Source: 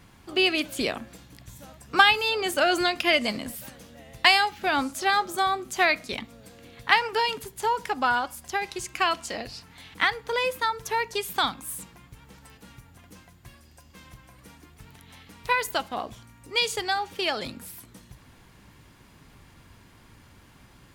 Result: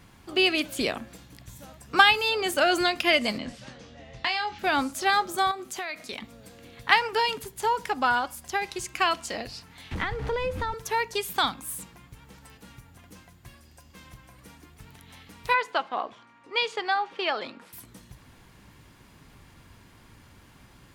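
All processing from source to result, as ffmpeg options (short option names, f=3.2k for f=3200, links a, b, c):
-filter_complex "[0:a]asettb=1/sr,asplit=3[a][b][c];[a]atrim=end=3.384[d];[b]atrim=start=3.38:end=4.59,asetpts=PTS-STARTPTS,afade=t=in:d=0.004:c=qsin,afade=t=out:st=1.206:d=0.004:c=qsin,lowpass=f=6k:w=0.5412,lowpass=f=6k:w=1.3066,acompressor=threshold=-31dB:ratio=2:attack=3.2:release=140:knee=1:detection=peak,asplit=2[e][f];[f]adelay=24,volume=-7dB[g];[e][g]amix=inputs=2:normalize=0,atrim=end_sample=53361[h];[c]atrim=start=4.586[i];[d][h]acrossfade=d=0.004:c1=hsin:c2=qsin[j];[j][i]acrossfade=d=0.004:c1=qsin:c2=hsin,asettb=1/sr,asplit=3[k][l][m];[k]atrim=end=5.514[n];[l]atrim=start=5.51:end=6.23,asetpts=PTS-STARTPTS,afade=t=in:d=0.004:c=qsin,afade=t=out:st=0.716:d=0.004:c=qsin,lowshelf=f=160:g=-11,acompressor=threshold=-31dB:ratio=4:attack=3.2:release=140:knee=1:detection=peak[o];[m]atrim=start=6.226[p];[n][o]acrossfade=d=0.004:c1=hsin:c2=qsin[q];[q][p]acrossfade=d=0.004:c1=qsin:c2=hsin,asettb=1/sr,asplit=3[r][s][t];[r]atrim=end=9.914[u];[s]atrim=start=9.91:end=10.74,asetpts=PTS-STARTPTS,afade=t=in:d=0.004:c=qsin,afade=t=out:st=0.826:d=0.004:c=qsin,aeval=exprs='val(0)+0.5*0.0251*sgn(val(0))':c=same,aemphasis=mode=reproduction:type=riaa,acrossover=split=140|330[v][w][x];[v]acompressor=threshold=-33dB:ratio=4[y];[w]acompressor=threshold=-41dB:ratio=4[z];[x]acompressor=threshold=-28dB:ratio=4[aa];[y][z][aa]amix=inputs=3:normalize=0[ab];[t]atrim=start=10.736[ac];[u][ab]acrossfade=d=0.004:c1=hsin:c2=qsin[ad];[ad][ac]acrossfade=d=0.004:c1=qsin:c2=hsin,asettb=1/sr,asplit=3[ae][af][ag];[ae]atrim=end=15.544[ah];[af]atrim=start=15.54:end=17.73,asetpts=PTS-STARTPTS,afade=t=in:d=0.004:c=qsin,afade=t=out:st=2.186:d=0.004:c=qsin,highpass=320,lowpass=3.3k,equalizer=f=1.1k:w=2.1:g=4.5[ai];[ag]atrim=start=17.726[aj];[ah][ai]acrossfade=d=0.004:c1=hsin:c2=qsin[ak];[ak][aj]acrossfade=d=0.004:c1=qsin:c2=hsin"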